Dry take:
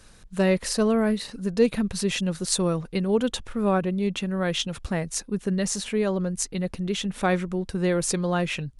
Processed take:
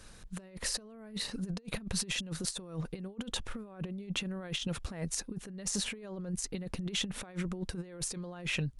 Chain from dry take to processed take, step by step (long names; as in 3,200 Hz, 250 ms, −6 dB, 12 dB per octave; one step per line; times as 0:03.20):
compressor whose output falls as the input rises −30 dBFS, ratio −0.5
level −7 dB